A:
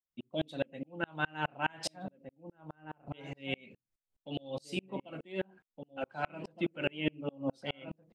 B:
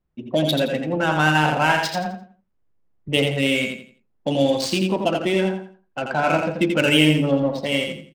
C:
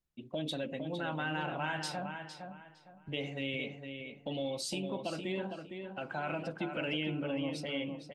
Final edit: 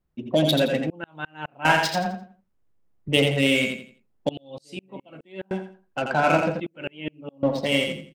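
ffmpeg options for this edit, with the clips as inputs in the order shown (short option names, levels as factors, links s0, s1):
-filter_complex "[0:a]asplit=3[s0][s1][s2];[1:a]asplit=4[s3][s4][s5][s6];[s3]atrim=end=0.902[s7];[s0]atrim=start=0.898:end=1.652[s8];[s4]atrim=start=1.648:end=4.292[s9];[s1]atrim=start=4.288:end=5.512[s10];[s5]atrim=start=5.508:end=6.602[s11];[s2]atrim=start=6.598:end=7.432[s12];[s6]atrim=start=7.428[s13];[s7][s8]acrossfade=d=0.004:c1=hsin:c2=hsin[s14];[s14][s9]acrossfade=d=0.004:c1=hsin:c2=hsin[s15];[s15][s10]acrossfade=d=0.004:c1=hsin:c2=hsin[s16];[s16][s11]acrossfade=d=0.004:c1=hsin:c2=hsin[s17];[s17][s12]acrossfade=d=0.004:c1=hsin:c2=hsin[s18];[s18][s13]acrossfade=d=0.004:c1=hsin:c2=hsin"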